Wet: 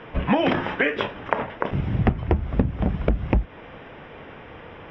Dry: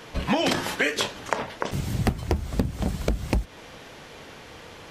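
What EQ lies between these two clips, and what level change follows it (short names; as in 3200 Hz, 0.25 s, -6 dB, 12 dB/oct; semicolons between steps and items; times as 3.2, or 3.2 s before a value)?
polynomial smoothing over 25 samples; air absorption 220 m; +4.0 dB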